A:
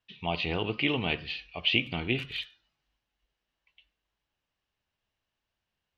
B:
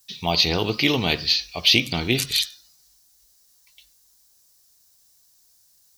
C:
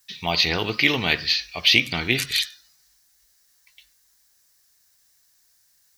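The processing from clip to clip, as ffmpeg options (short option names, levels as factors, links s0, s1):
-af "aexciter=amount=14.7:drive=7.9:freq=4500,volume=2.37"
-af "equalizer=f=1800:w=1.3:g=11.5,volume=0.668"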